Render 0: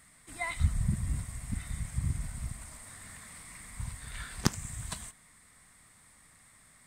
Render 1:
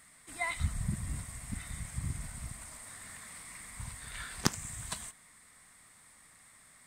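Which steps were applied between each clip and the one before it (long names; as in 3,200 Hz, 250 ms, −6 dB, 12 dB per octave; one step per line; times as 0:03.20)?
low-shelf EQ 210 Hz −7.5 dB
level +1 dB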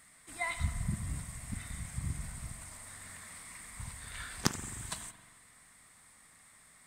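spring reverb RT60 1.6 s, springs 43 ms, chirp 65 ms, DRR 10.5 dB
level −1 dB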